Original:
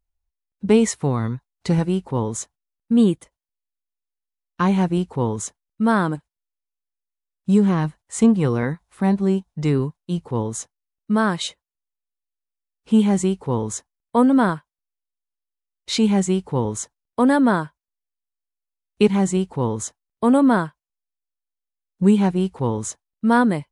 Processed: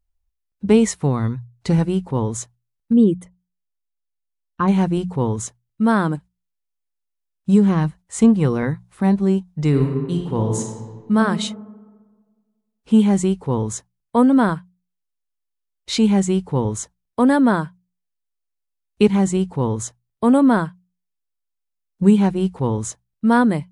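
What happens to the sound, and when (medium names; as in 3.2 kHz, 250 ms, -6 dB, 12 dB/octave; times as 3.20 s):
2.93–4.68 s: resonances exaggerated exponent 1.5
9.68–11.17 s: reverb throw, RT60 1.5 s, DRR 2 dB
whole clip: bass shelf 150 Hz +6.5 dB; hum notches 60/120/180 Hz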